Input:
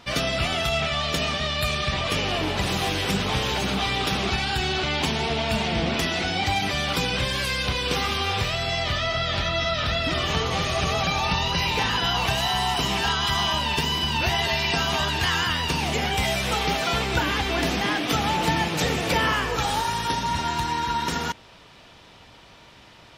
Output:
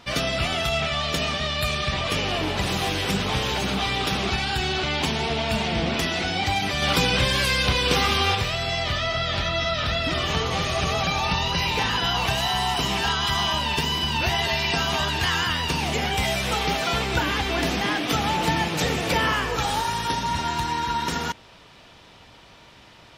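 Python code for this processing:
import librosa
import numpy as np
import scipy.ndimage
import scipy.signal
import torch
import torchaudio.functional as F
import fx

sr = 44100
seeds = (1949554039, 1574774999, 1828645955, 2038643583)

y = fx.edit(x, sr, fx.clip_gain(start_s=6.82, length_s=1.53, db=4.0), tone=tone)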